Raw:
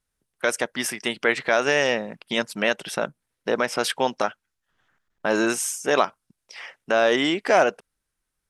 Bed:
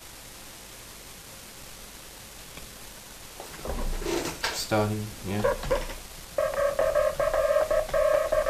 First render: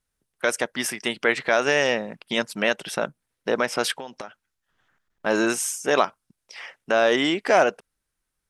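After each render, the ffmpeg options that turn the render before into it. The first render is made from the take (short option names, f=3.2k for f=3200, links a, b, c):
-filter_complex "[0:a]asettb=1/sr,asplit=3[a][b][c];[a]atrim=end=3.944[d];[b]atrim=start=3.94:end=5.26,asetpts=PTS-STARTPTS,afade=t=in:d=0.004:c=qsin,afade=t=out:st=1.316:d=0.004:c=qsin,acompressor=threshold=-32dB:ratio=6:attack=3.2:release=140:knee=1:detection=peak[e];[c]atrim=start=5.256[f];[d][e]acrossfade=d=0.004:c1=hsin:c2=qsin[g];[g][f]acrossfade=d=0.004:c1=qsin:c2=hsin"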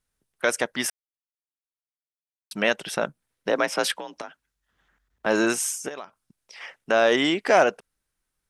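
-filter_complex "[0:a]asettb=1/sr,asplit=3[a][b][c];[a]atrim=end=3.494[d];[b]atrim=start=3.49:end=5.26,asetpts=PTS-STARTPTS,afade=t=in:d=0.004:c=qsin,afade=t=out:st=1.766:d=0.004:c=qsin,afreqshift=47[e];[c]atrim=start=5.256[f];[d][e]acrossfade=d=0.004:c1=hsin:c2=qsin[g];[g][f]acrossfade=d=0.004:c1=qsin:c2=hsin,asplit=3[h][i][j];[h]afade=t=out:st=5.87:d=0.02[k];[i]acompressor=threshold=-42dB:ratio=2.5:attack=3.2:release=140:knee=1:detection=peak,afade=t=in:st=5.87:d=0.02,afade=t=out:st=6.6:d=0.02[l];[j]afade=t=in:st=6.6:d=0.02[m];[k][l][m]amix=inputs=3:normalize=0,asplit=3[n][o][p];[n]atrim=end=0.9,asetpts=PTS-STARTPTS,afade=t=out:st=0.896:d=0.004:c=hsin[q];[o]atrim=start=0.9:end=2.51,asetpts=PTS-STARTPTS,volume=0[r];[p]atrim=start=2.51,asetpts=PTS-STARTPTS,afade=t=in:d=0.004:c=hsin[s];[q][r][s]concat=n=3:v=0:a=1"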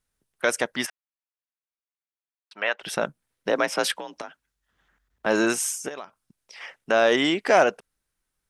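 -filter_complex "[0:a]asplit=3[a][b][c];[a]afade=t=out:st=0.85:d=0.02[d];[b]highpass=720,lowpass=2.6k,afade=t=in:st=0.85:d=0.02,afade=t=out:st=2.82:d=0.02[e];[c]afade=t=in:st=2.82:d=0.02[f];[d][e][f]amix=inputs=3:normalize=0"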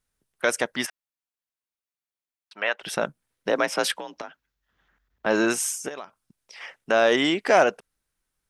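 -filter_complex "[0:a]asettb=1/sr,asplit=3[a][b][c];[a]atrim=end=4.124[d];[b]atrim=start=4.12:end=5.51,asetpts=PTS-STARTPTS,afade=t=in:d=0.004:c=qsin,afade=t=out:st=1.386:d=0.004:c=qsin,equalizer=f=9.1k:t=o:w=0.5:g=-14.5[e];[c]atrim=start=5.506[f];[d][e]acrossfade=d=0.004:c1=hsin:c2=qsin[g];[g][f]acrossfade=d=0.004:c1=qsin:c2=hsin"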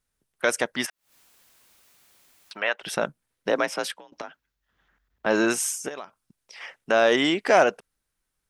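-filter_complex "[0:a]asplit=3[a][b][c];[a]afade=t=out:st=0.85:d=0.02[d];[b]acompressor=mode=upward:threshold=-32dB:ratio=2.5:attack=3.2:release=140:knee=2.83:detection=peak,afade=t=in:st=0.85:d=0.02,afade=t=out:st=2.68:d=0.02[e];[c]afade=t=in:st=2.68:d=0.02[f];[d][e][f]amix=inputs=3:normalize=0,asplit=2[g][h];[g]atrim=end=4.12,asetpts=PTS-STARTPTS,afade=t=out:st=3.54:d=0.58:silence=0.105925[i];[h]atrim=start=4.12,asetpts=PTS-STARTPTS,afade=t=in:d=0.004:c=hsin:silence=0.105925[j];[i][j]concat=n=2:v=0:a=1"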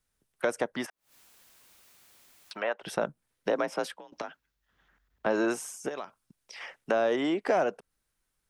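-filter_complex "[0:a]acrossover=split=320|1200[a][b][c];[a]acompressor=threshold=-37dB:ratio=4[d];[b]acompressor=threshold=-25dB:ratio=4[e];[c]acompressor=threshold=-41dB:ratio=4[f];[d][e][f]amix=inputs=3:normalize=0"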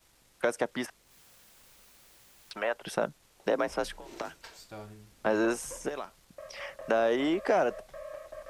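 -filter_complex "[1:a]volume=-20dB[a];[0:a][a]amix=inputs=2:normalize=0"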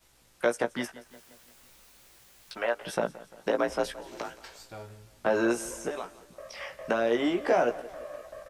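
-filter_complex "[0:a]asplit=2[a][b];[b]adelay=17,volume=-5dB[c];[a][c]amix=inputs=2:normalize=0,aecho=1:1:173|346|519|692|865:0.119|0.0642|0.0347|0.0187|0.0101"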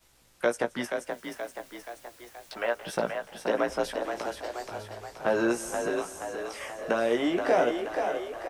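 -filter_complex "[0:a]asplit=8[a][b][c][d][e][f][g][h];[b]adelay=477,afreqshift=39,volume=-6dB[i];[c]adelay=954,afreqshift=78,volume=-11.2dB[j];[d]adelay=1431,afreqshift=117,volume=-16.4dB[k];[e]adelay=1908,afreqshift=156,volume=-21.6dB[l];[f]adelay=2385,afreqshift=195,volume=-26.8dB[m];[g]adelay=2862,afreqshift=234,volume=-32dB[n];[h]adelay=3339,afreqshift=273,volume=-37.2dB[o];[a][i][j][k][l][m][n][o]amix=inputs=8:normalize=0"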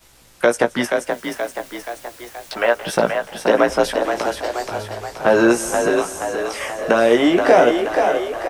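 -af "volume=12dB,alimiter=limit=-2dB:level=0:latency=1"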